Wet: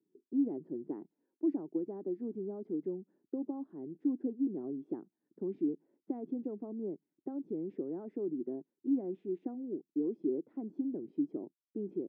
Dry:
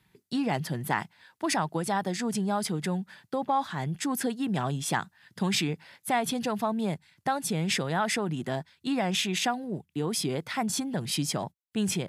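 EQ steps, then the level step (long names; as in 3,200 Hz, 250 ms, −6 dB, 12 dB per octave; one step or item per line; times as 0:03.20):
flat-topped band-pass 330 Hz, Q 2.5
+1.5 dB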